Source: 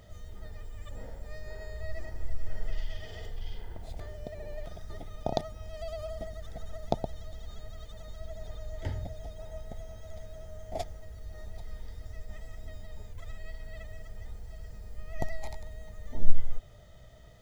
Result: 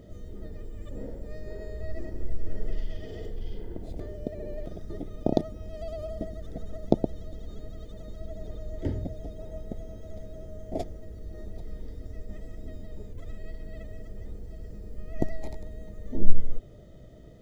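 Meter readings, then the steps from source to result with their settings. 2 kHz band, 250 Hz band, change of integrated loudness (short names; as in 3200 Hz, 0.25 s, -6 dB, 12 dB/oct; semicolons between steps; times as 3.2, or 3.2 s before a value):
-4.5 dB, +12.5 dB, +4.5 dB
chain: EQ curve 100 Hz 0 dB, 320 Hz +13 dB, 540 Hz +4 dB, 810 Hz -7 dB; gain +2.5 dB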